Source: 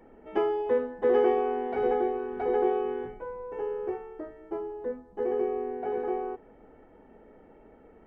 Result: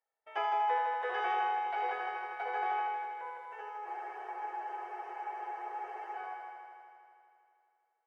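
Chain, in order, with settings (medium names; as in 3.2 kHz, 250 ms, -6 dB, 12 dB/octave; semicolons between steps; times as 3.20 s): Bessel high-pass 1 kHz, order 6; gate -59 dBFS, range -30 dB; multi-head delay 80 ms, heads first and second, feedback 72%, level -7 dB; on a send at -10 dB: reverberation RT60 0.50 s, pre-delay 3 ms; on the sum: spectral freeze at 3.87 s, 2.30 s; trim +2 dB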